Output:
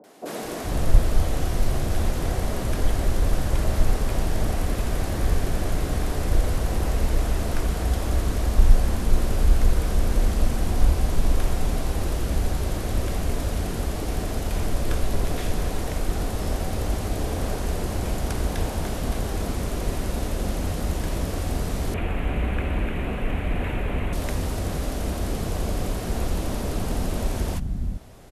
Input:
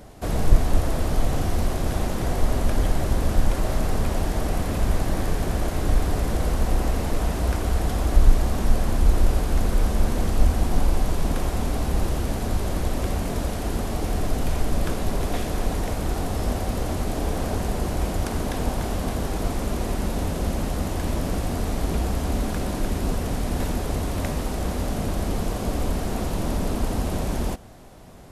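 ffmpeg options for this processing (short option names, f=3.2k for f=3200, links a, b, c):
-filter_complex "[0:a]asettb=1/sr,asplit=3[a][b][c];[a]atrim=end=21.904[d];[b]atrim=start=21.9:end=24.09,asetpts=PTS-STARTPTS,afade=t=in:d=0.004:c=qsin,afade=t=out:st=2.186:d=0.004:c=qsin,highshelf=f=3.6k:t=q:w=3:g=-13[e];[c]atrim=start=24.086[f];[d][e]acrossfade=d=0.004:c1=hsin:c2=qsin[g];[g][f]acrossfade=d=0.004:c1=qsin:c2=hsin,acrossover=split=230|870[h][i][j];[j]adelay=40[k];[h]adelay=420[l];[l][i][k]amix=inputs=3:normalize=0"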